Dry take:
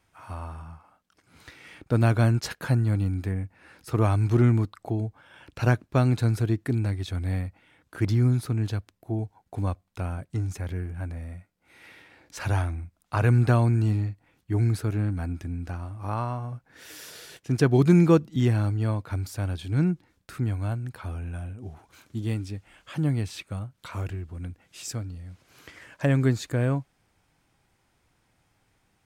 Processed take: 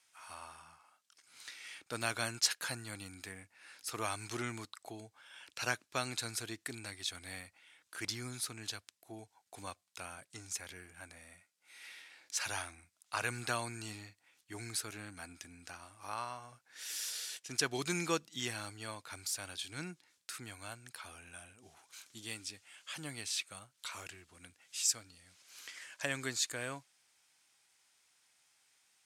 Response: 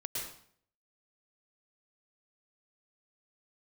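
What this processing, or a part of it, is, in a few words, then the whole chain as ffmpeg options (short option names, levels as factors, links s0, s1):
piezo pickup straight into a mixer: -af "lowpass=8400,aderivative,volume=2.66"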